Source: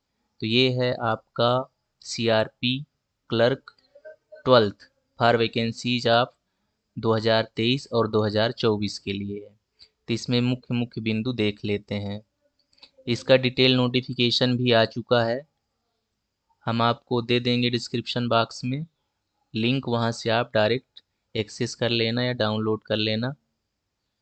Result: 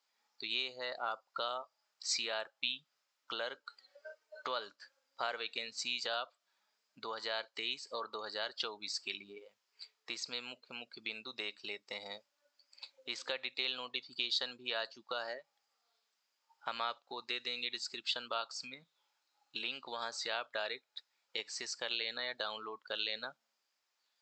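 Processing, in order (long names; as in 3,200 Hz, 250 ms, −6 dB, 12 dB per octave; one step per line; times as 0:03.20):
downward compressor 6 to 1, threshold −30 dBFS, peak gain reduction 17.5 dB
high-pass filter 900 Hz 12 dB per octave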